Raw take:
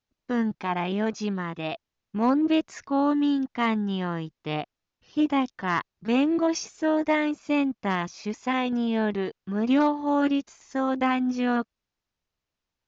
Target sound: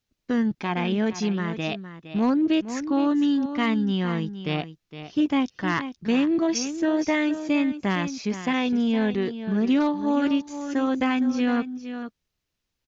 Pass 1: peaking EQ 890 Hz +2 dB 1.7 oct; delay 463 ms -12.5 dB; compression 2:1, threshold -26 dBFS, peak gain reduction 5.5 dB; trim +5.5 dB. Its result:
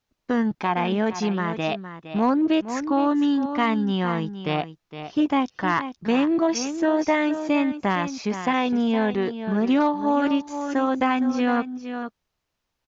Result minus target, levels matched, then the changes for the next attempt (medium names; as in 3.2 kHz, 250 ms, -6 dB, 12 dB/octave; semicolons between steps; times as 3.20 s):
1 kHz band +5.5 dB
change: peaking EQ 890 Hz -7 dB 1.7 oct